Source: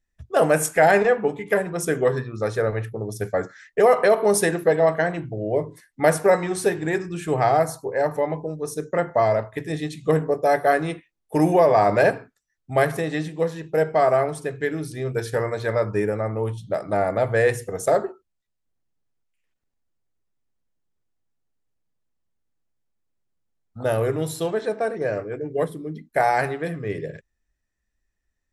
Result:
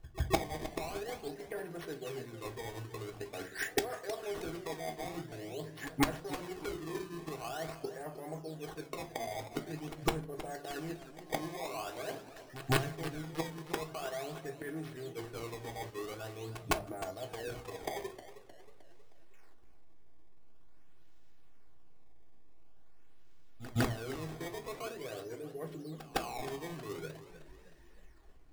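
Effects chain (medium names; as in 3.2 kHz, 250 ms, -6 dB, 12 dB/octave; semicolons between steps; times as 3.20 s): band-stop 4.2 kHz, Q 8.8; reverse; compression 8:1, threshold -27 dBFS, peak gain reduction 15 dB; reverse; decimation with a swept rate 18×, swing 160% 0.46 Hz; inverted gate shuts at -30 dBFS, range -27 dB; integer overflow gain 34.5 dB; reverse echo 158 ms -17.5 dB; on a send at -3 dB: reverberation RT60 0.30 s, pre-delay 3 ms; on the sum: modulated delay 313 ms, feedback 49%, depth 125 cents, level -13.5 dB; trim +13.5 dB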